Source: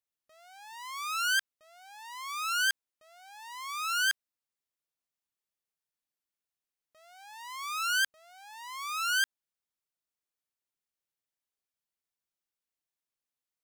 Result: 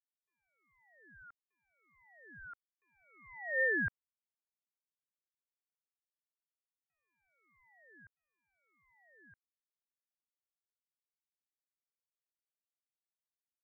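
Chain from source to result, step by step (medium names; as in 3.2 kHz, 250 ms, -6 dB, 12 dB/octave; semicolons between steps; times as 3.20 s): Doppler pass-by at 3.61 s, 22 m/s, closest 1.4 m; high-pass 860 Hz; frequency inversion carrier 3.1 kHz; trim +5.5 dB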